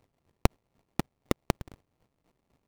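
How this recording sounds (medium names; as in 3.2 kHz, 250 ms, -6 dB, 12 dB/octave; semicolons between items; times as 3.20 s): a buzz of ramps at a fixed pitch in blocks of 32 samples; chopped level 4 Hz, depth 65%, duty 25%; aliases and images of a low sample rate 1.5 kHz, jitter 20%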